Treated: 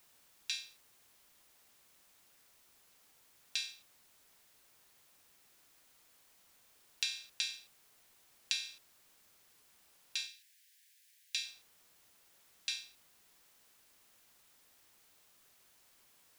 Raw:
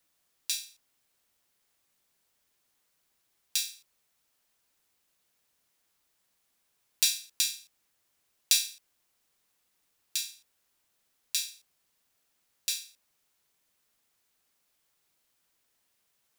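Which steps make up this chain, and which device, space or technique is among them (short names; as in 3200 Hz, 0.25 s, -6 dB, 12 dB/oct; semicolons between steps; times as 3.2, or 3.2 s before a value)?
baby monitor (BPF 310–3300 Hz; compressor, threshold -34 dBFS, peak gain reduction 7.5 dB; white noise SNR 18 dB); 10.27–11.45 steep high-pass 1600 Hz 96 dB/oct; gain +2.5 dB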